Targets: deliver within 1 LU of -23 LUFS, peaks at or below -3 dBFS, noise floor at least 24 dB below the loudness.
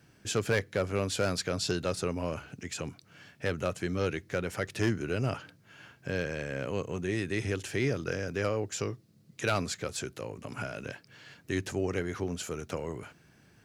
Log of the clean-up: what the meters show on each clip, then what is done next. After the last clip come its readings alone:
clipped samples 0.3%; clipping level -20.0 dBFS; loudness -33.0 LUFS; peak level -20.0 dBFS; loudness target -23.0 LUFS
-> clip repair -20 dBFS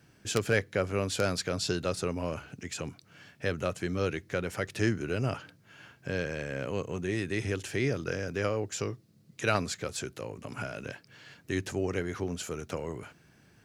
clipped samples 0.0%; loudness -33.0 LUFS; peak level -11.0 dBFS; loudness target -23.0 LUFS
-> trim +10 dB; peak limiter -3 dBFS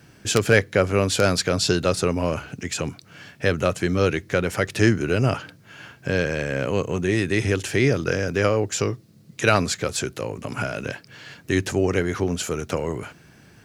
loudness -23.0 LUFS; peak level -3.0 dBFS; noise floor -52 dBFS

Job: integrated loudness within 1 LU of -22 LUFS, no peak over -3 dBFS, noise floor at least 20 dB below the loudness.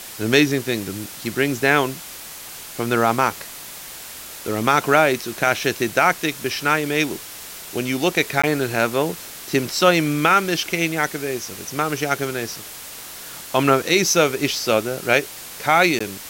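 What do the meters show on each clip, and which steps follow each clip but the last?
dropouts 2; longest dropout 15 ms; noise floor -37 dBFS; noise floor target -40 dBFS; loudness -20.0 LUFS; peak level -3.0 dBFS; loudness target -22.0 LUFS
-> interpolate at 8.42/15.99 s, 15 ms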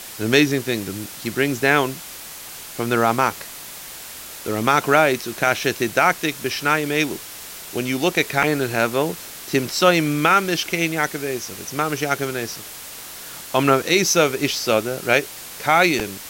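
dropouts 0; noise floor -37 dBFS; noise floor target -40 dBFS
-> noise reduction 6 dB, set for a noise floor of -37 dBFS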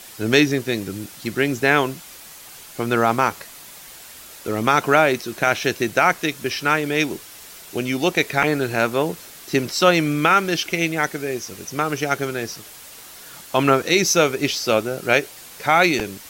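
noise floor -41 dBFS; loudness -20.0 LUFS; peak level -3.0 dBFS; loudness target -22.0 LUFS
-> trim -2 dB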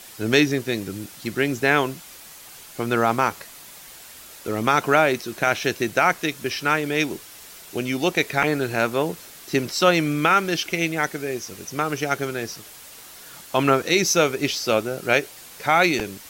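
loudness -22.0 LUFS; peak level -5.0 dBFS; noise floor -43 dBFS

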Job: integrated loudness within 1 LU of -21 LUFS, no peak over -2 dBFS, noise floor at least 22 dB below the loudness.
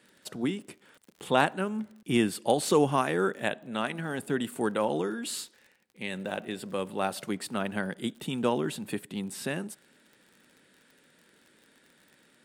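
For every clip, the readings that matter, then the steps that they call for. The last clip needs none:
tick rate 46 per s; loudness -30.5 LUFS; peak level -7.0 dBFS; loudness target -21.0 LUFS
-> de-click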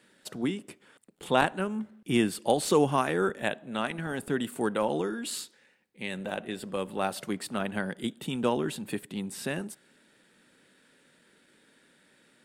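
tick rate 0.16 per s; loudness -30.5 LUFS; peak level -7.0 dBFS; loudness target -21.0 LUFS
-> trim +9.5 dB; peak limiter -2 dBFS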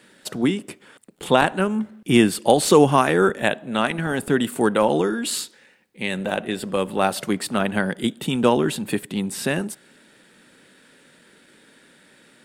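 loudness -21.5 LUFS; peak level -2.0 dBFS; noise floor -54 dBFS

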